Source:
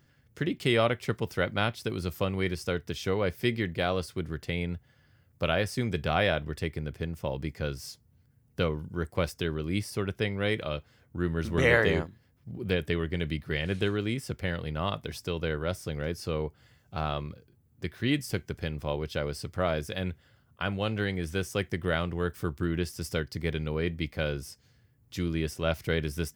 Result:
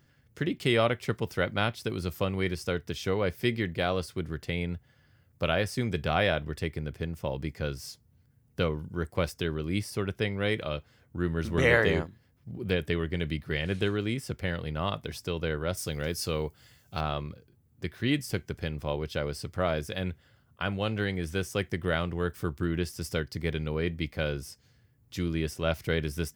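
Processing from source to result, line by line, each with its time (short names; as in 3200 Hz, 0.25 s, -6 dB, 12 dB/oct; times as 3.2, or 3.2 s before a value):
15.77–17.01 high shelf 3400 Hz +11.5 dB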